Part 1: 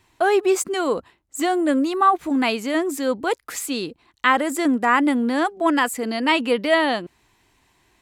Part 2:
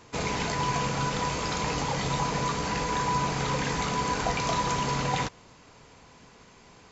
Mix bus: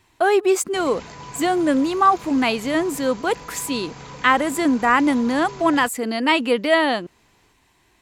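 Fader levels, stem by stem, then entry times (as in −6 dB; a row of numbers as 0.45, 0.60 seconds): +1.0, −10.0 decibels; 0.00, 0.60 seconds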